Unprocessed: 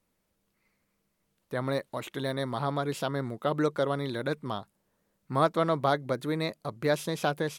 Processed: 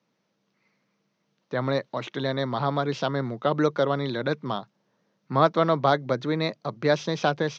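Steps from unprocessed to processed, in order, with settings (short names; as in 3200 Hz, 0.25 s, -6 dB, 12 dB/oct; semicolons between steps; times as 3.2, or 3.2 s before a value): Chebyshev band-pass 120–6100 Hz, order 5; gain +5 dB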